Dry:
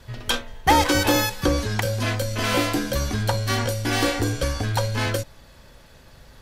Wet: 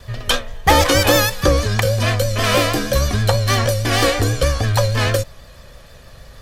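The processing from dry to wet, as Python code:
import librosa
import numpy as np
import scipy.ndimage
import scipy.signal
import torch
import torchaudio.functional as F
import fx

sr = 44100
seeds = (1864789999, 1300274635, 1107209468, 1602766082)

y = fx.vibrato(x, sr, rate_hz=6.3, depth_cents=61.0)
y = y + 0.41 * np.pad(y, (int(1.7 * sr / 1000.0), 0))[:len(y)]
y = F.gain(torch.from_numpy(y), 5.5).numpy()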